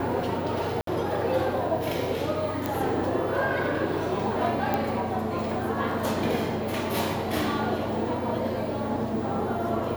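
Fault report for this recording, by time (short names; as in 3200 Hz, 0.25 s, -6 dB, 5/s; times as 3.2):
0.81–0.87 gap 63 ms
2.66 pop
4.74 pop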